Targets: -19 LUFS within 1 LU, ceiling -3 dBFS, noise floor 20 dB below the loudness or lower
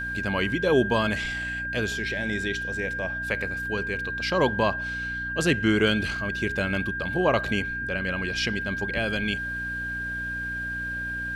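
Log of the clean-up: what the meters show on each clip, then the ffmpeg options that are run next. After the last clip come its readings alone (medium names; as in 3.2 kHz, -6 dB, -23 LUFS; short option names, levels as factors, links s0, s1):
hum 60 Hz; highest harmonic 300 Hz; hum level -36 dBFS; steady tone 1.6 kHz; tone level -29 dBFS; loudness -26.5 LUFS; peak level -9.0 dBFS; loudness target -19.0 LUFS
-> -af "bandreject=f=60:t=h:w=4,bandreject=f=120:t=h:w=4,bandreject=f=180:t=h:w=4,bandreject=f=240:t=h:w=4,bandreject=f=300:t=h:w=4"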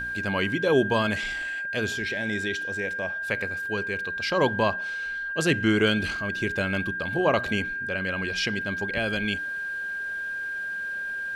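hum not found; steady tone 1.6 kHz; tone level -29 dBFS
-> -af "bandreject=f=1600:w=30"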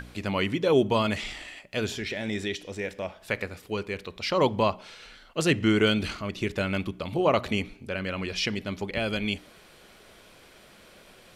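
steady tone not found; loudness -28.0 LUFS; peak level -9.5 dBFS; loudness target -19.0 LUFS
-> -af "volume=2.82,alimiter=limit=0.708:level=0:latency=1"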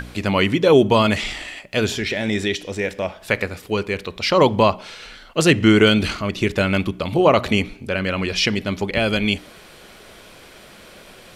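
loudness -19.5 LUFS; peak level -3.0 dBFS; noise floor -45 dBFS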